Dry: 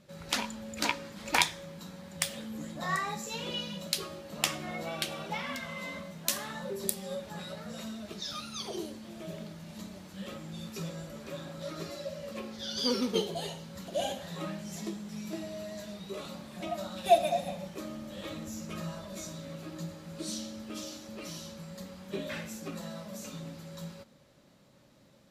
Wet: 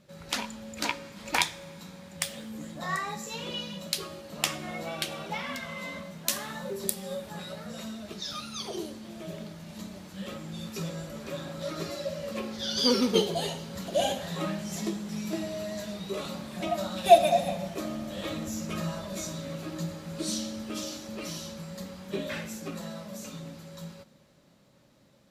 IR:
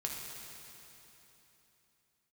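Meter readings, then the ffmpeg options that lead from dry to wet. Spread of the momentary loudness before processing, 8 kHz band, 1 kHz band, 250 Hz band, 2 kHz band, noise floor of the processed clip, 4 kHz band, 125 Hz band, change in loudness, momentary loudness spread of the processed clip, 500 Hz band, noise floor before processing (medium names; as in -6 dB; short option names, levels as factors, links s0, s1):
13 LU, +2.5 dB, +4.5 dB, +4.5 dB, +1.5 dB, -60 dBFS, +3.0 dB, +3.5 dB, +4.0 dB, 13 LU, +5.5 dB, -60 dBFS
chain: -filter_complex "[0:a]dynaudnorm=f=610:g=13:m=2.11,asplit=2[s0][s1];[1:a]atrim=start_sample=2205[s2];[s1][s2]afir=irnorm=-1:irlink=0,volume=0.112[s3];[s0][s3]amix=inputs=2:normalize=0,volume=0.891"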